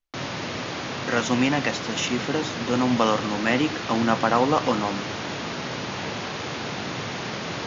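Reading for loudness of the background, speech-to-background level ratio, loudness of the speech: −30.5 LKFS, 6.5 dB, −24.0 LKFS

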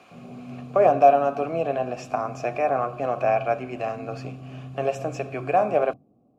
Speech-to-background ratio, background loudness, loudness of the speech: 17.5 dB, −41.0 LKFS, −23.5 LKFS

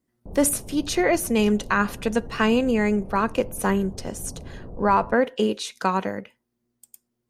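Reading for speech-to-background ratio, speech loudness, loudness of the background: 18.0 dB, −23.0 LKFS, −41.0 LKFS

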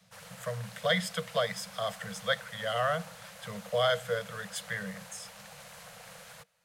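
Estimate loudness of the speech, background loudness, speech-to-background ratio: −32.5 LKFS, −48.0 LKFS, 15.5 dB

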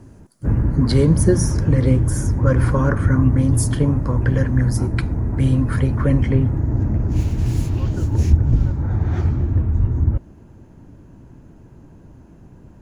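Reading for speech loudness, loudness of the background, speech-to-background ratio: −20.5 LKFS, −20.5 LKFS, 0.0 dB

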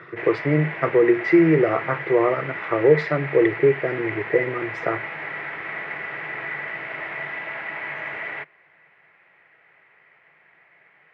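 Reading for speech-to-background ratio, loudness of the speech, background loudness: 9.5 dB, −21.0 LKFS, −30.5 LKFS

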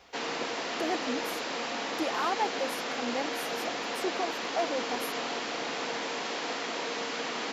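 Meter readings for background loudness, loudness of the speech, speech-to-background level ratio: −33.0 LKFS, −35.5 LKFS, −2.5 dB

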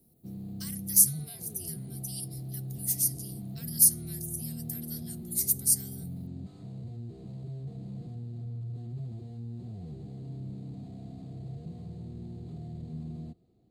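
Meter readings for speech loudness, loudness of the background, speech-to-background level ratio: −25.5 LKFS, −41.0 LKFS, 15.5 dB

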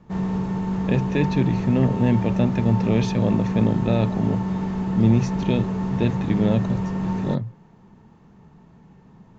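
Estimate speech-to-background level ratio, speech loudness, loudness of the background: 2.5 dB, −23.5 LKFS, −26.0 LKFS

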